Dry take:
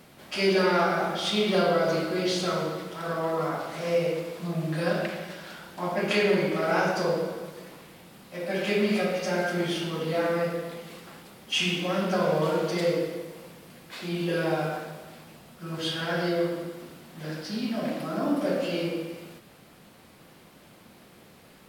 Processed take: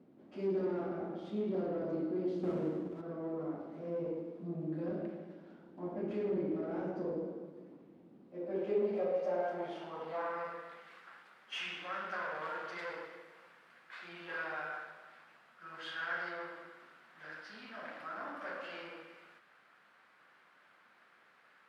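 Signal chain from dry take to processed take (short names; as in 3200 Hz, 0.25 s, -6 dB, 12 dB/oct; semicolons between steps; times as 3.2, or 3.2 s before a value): 2.43–3.01 half-waves squared off; tube stage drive 23 dB, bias 0.45; band-pass sweep 290 Hz -> 1500 Hz, 8.16–10.9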